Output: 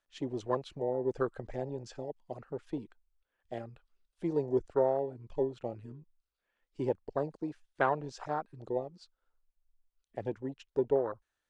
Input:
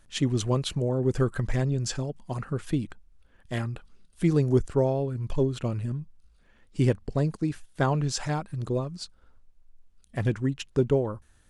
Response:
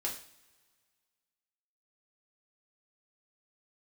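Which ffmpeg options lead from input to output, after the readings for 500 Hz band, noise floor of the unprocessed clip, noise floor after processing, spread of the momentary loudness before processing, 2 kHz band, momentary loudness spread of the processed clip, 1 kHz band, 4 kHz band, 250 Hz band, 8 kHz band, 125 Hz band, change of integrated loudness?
-3.5 dB, -60 dBFS, under -85 dBFS, 11 LU, -5.5 dB, 14 LU, -1.0 dB, under -15 dB, -10.0 dB, under -20 dB, -18.0 dB, -7.0 dB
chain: -filter_complex "[0:a]afwtdn=0.0282,acrossover=split=380 6700:gain=0.112 1 0.178[s0][s1][s2];[s0][s1][s2]amix=inputs=3:normalize=0"

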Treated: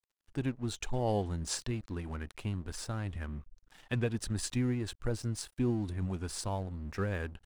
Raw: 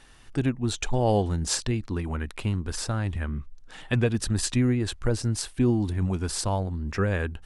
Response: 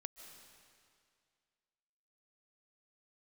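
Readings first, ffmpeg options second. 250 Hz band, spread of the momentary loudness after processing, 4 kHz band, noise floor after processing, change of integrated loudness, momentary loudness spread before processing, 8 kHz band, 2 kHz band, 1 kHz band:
-8.5 dB, 8 LU, -9.0 dB, -82 dBFS, -8.5 dB, 7 LU, -9.0 dB, -8.5 dB, -8.5 dB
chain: -af "aeval=exprs='sgn(val(0))*max(abs(val(0))-0.00562,0)':c=same,volume=0.398"

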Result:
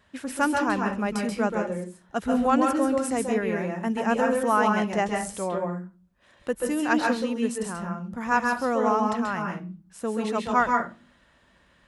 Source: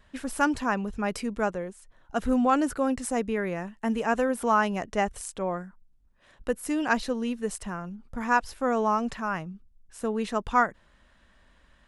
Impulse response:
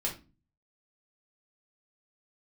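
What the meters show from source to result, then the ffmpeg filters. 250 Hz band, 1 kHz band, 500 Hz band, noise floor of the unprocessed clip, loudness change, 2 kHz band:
+3.0 dB, +2.0 dB, +3.0 dB, -61 dBFS, +2.5 dB, +2.0 dB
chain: -filter_complex "[0:a]highpass=87,asplit=2[s0][s1];[1:a]atrim=start_sample=2205,adelay=132[s2];[s1][s2]afir=irnorm=-1:irlink=0,volume=0.562[s3];[s0][s3]amix=inputs=2:normalize=0"

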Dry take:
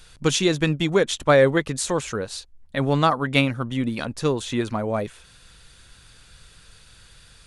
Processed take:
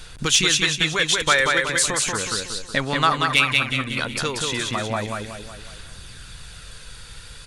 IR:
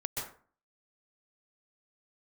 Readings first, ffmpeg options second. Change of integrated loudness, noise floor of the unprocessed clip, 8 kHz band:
+2.5 dB, -52 dBFS, +9.0 dB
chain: -filter_complex "[0:a]acrossover=split=1200[s0][s1];[s0]acompressor=threshold=0.02:ratio=12[s2];[s2][s1]amix=inputs=2:normalize=0,aecho=1:1:185|370|555|740|925:0.668|0.287|0.124|0.0531|0.0228,aeval=exprs='0.562*sin(PI/2*1.41*val(0)/0.562)':c=same,aphaser=in_gain=1:out_gain=1:delay=2.2:decay=0.24:speed=0.35:type=sinusoidal"

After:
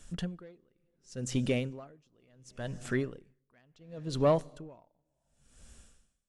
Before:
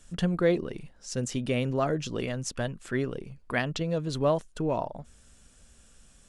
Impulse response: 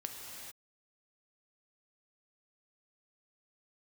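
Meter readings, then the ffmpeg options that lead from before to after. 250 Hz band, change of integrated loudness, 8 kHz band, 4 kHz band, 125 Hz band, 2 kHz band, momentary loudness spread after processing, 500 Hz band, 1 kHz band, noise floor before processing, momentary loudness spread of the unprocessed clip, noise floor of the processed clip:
-6.0 dB, -3.0 dB, -7.5 dB, -7.0 dB, -5.5 dB, -8.5 dB, 21 LU, -5.5 dB, -6.5 dB, -58 dBFS, 10 LU, -80 dBFS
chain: -filter_complex "[0:a]asoftclip=type=tanh:threshold=0.158,asplit=2[s0][s1];[1:a]atrim=start_sample=2205,lowshelf=f=390:g=9[s2];[s1][s2]afir=irnorm=-1:irlink=0,volume=0.15[s3];[s0][s3]amix=inputs=2:normalize=0,aeval=exprs='val(0)*pow(10,-37*(0.5-0.5*cos(2*PI*0.7*n/s))/20)':c=same"

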